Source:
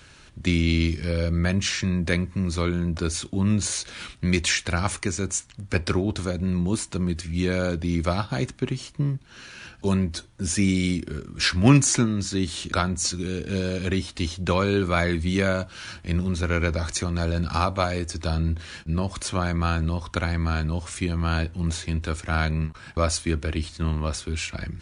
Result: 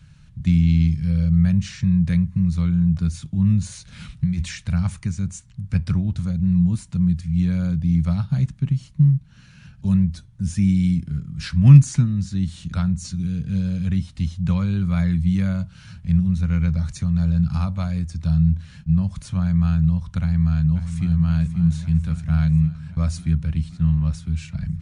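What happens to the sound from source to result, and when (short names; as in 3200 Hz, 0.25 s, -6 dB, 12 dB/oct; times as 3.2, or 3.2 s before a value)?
3.92–4.44 negative-ratio compressor -26 dBFS
20.2–21.1 echo throw 0.54 s, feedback 75%, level -9.5 dB
whole clip: resonant low shelf 240 Hz +14 dB, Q 3; gain -11 dB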